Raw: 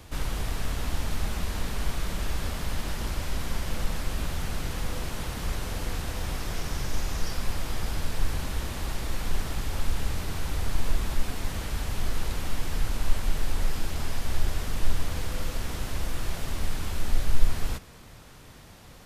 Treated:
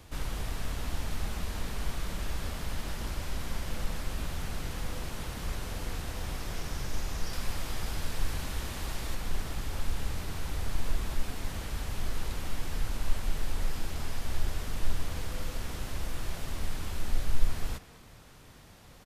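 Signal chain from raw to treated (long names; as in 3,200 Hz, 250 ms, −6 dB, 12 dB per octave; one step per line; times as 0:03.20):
far-end echo of a speakerphone 200 ms, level −15 dB
0:07.33–0:09.15: one half of a high-frequency compander encoder only
level −4.5 dB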